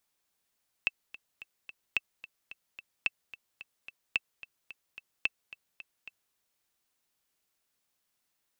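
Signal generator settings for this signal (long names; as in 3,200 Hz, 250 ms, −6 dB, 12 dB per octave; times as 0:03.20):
click track 219 BPM, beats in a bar 4, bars 5, 2,650 Hz, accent 18 dB −13 dBFS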